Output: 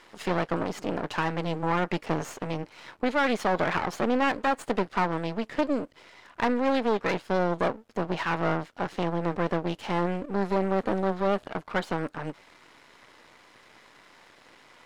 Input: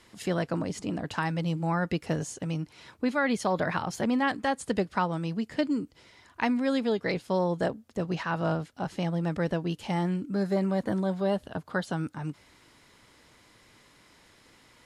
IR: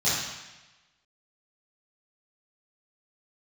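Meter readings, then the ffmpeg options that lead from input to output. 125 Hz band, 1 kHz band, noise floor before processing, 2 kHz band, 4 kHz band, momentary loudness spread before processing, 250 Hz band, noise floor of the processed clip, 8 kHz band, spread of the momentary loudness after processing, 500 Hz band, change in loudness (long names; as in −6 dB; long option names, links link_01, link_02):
−2.5 dB, +4.0 dB, −60 dBFS, +2.5 dB, +1.5 dB, 7 LU, −0.5 dB, −56 dBFS, −3.0 dB, 8 LU, +2.5 dB, +1.5 dB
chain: -filter_complex "[0:a]aeval=exprs='max(val(0),0)':channel_layout=same,asplit=2[link_01][link_02];[link_02]highpass=frequency=720:poles=1,volume=18dB,asoftclip=type=tanh:threshold=-13dB[link_03];[link_01][link_03]amix=inputs=2:normalize=0,lowpass=frequency=1600:poles=1,volume=-6dB,volume=1.5dB"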